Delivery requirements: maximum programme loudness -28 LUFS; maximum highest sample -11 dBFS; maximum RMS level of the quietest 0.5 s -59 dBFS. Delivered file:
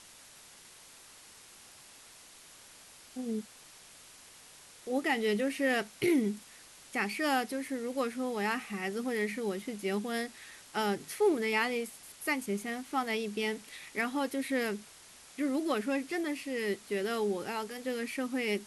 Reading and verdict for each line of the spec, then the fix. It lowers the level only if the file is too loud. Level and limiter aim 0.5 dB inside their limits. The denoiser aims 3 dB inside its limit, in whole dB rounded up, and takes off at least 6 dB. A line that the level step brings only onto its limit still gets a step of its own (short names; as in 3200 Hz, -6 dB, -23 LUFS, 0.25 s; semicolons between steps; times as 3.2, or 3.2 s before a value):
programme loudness -33.0 LUFS: OK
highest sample -17.5 dBFS: OK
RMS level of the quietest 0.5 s -55 dBFS: fail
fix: denoiser 7 dB, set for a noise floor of -55 dBFS